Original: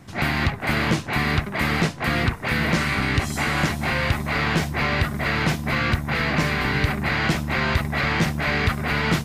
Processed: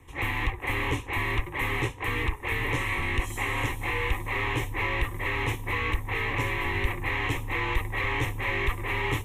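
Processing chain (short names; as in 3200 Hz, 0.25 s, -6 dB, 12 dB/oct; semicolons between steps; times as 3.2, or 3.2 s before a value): frequency shift -43 Hz; fixed phaser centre 970 Hz, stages 8; gain -3 dB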